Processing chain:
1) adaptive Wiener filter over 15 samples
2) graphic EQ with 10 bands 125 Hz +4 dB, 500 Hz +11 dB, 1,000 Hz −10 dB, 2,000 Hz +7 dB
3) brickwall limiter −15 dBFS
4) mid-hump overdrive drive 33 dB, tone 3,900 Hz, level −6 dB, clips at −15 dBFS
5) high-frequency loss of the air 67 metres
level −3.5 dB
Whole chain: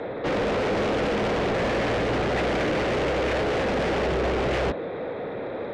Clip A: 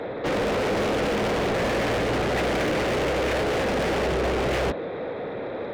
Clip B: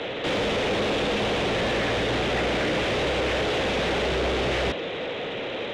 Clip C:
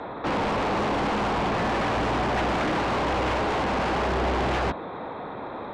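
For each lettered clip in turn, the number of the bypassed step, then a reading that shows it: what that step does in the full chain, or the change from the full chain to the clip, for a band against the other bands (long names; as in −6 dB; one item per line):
5, 8 kHz band +5.0 dB
1, 4 kHz band +8.0 dB
2, change in momentary loudness spread +3 LU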